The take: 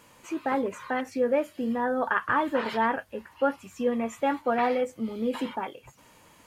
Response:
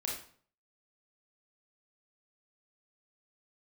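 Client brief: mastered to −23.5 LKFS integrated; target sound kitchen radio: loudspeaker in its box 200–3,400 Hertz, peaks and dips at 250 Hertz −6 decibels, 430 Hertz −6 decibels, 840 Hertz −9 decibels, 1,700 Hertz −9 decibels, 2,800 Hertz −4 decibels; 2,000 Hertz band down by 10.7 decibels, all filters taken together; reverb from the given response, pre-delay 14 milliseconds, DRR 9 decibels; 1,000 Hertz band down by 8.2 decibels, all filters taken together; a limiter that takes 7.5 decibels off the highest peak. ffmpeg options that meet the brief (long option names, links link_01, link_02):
-filter_complex "[0:a]equalizer=frequency=1000:width_type=o:gain=-3,equalizer=frequency=2000:width_type=o:gain=-4.5,alimiter=limit=-22dB:level=0:latency=1,asplit=2[link_01][link_02];[1:a]atrim=start_sample=2205,adelay=14[link_03];[link_02][link_03]afir=irnorm=-1:irlink=0,volume=-11.5dB[link_04];[link_01][link_04]amix=inputs=2:normalize=0,highpass=200,equalizer=frequency=250:width_type=q:width=4:gain=-6,equalizer=frequency=430:width_type=q:width=4:gain=-6,equalizer=frequency=840:width_type=q:width=4:gain=-9,equalizer=frequency=1700:width_type=q:width=4:gain=-9,equalizer=frequency=2800:width_type=q:width=4:gain=-4,lowpass=frequency=3400:width=0.5412,lowpass=frequency=3400:width=1.3066,volume=12.5dB"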